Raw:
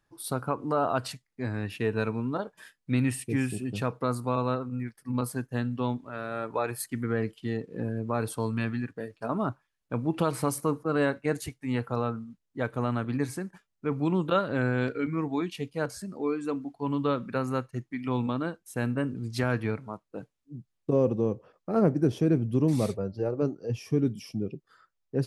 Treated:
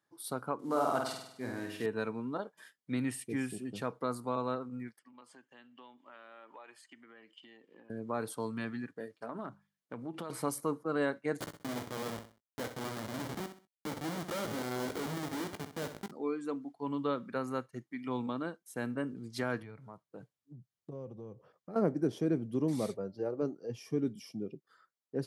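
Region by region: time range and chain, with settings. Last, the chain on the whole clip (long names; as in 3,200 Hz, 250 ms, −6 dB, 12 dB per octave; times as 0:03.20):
0:00.59–0:01.86: variable-slope delta modulation 64 kbit/s + flutter between parallel walls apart 8.6 metres, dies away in 0.74 s
0:04.99–0:07.90: downward compressor, threshold −37 dBFS + loudspeaker in its box 440–6,800 Hz, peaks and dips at 450 Hz −9 dB, 680 Hz −5 dB, 1,400 Hz −4 dB, 2,900 Hz +10 dB, 4,100 Hz −6 dB, 5,800 Hz −7 dB
0:09.14–0:10.30: mains-hum notches 50/100/150/200 Hz + downward compressor 5 to 1, threshold −30 dBFS + highs frequency-modulated by the lows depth 0.16 ms
0:11.40–0:16.11: comparator with hysteresis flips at −32.5 dBFS + double-tracking delay 19 ms −13 dB + repeating echo 64 ms, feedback 31%, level −9.5 dB
0:19.62–0:21.76: low shelf with overshoot 180 Hz +8 dB, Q 1.5 + downward compressor 3 to 1, threshold −37 dBFS
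whole clip: high-pass filter 190 Hz 12 dB per octave; notch filter 2,600 Hz, Q 9.6; level −5.5 dB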